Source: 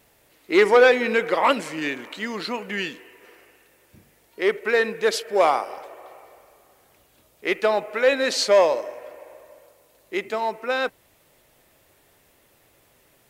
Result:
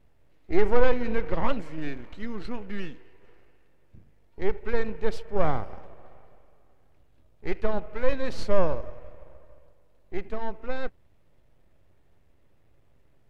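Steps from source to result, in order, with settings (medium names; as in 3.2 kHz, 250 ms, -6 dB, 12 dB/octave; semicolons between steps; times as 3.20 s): partial rectifier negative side -12 dB; RIAA curve playback; trim -7.5 dB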